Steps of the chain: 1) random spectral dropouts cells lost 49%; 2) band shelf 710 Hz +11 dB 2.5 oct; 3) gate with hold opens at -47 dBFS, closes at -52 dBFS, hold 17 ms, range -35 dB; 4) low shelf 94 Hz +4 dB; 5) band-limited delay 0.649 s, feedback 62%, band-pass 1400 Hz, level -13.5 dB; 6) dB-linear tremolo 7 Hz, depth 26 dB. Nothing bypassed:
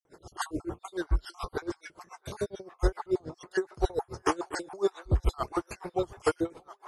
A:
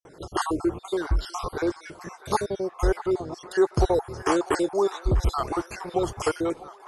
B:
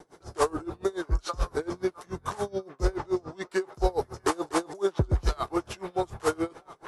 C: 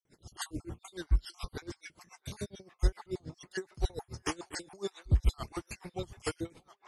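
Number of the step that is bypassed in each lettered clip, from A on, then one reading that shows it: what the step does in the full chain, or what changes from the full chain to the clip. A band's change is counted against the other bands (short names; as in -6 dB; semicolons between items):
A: 6, momentary loudness spread change -2 LU; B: 1, 2 kHz band -2.0 dB; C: 2, 1 kHz band -8.0 dB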